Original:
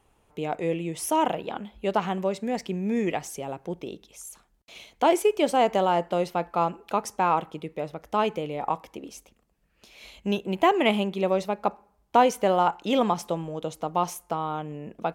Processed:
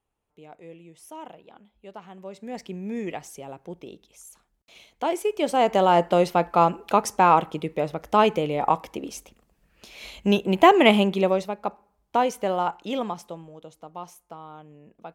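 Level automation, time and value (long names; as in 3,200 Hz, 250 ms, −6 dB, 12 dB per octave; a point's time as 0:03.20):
0:02.07 −17 dB
0:02.59 −5 dB
0:05.15 −5 dB
0:06.00 +6 dB
0:11.14 +6 dB
0:11.54 −3 dB
0:12.77 −3 dB
0:13.66 −12.5 dB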